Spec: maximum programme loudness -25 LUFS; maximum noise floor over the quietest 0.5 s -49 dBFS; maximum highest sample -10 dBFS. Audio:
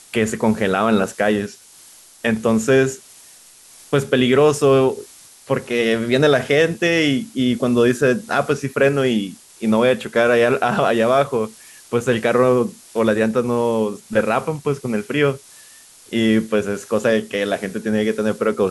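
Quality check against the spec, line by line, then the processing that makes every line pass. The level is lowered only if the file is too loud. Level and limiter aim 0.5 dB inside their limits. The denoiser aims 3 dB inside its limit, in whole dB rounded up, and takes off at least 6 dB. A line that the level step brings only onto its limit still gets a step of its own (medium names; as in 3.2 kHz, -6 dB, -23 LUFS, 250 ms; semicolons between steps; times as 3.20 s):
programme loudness -18.5 LUFS: fail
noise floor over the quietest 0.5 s -46 dBFS: fail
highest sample -5.0 dBFS: fail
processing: trim -7 dB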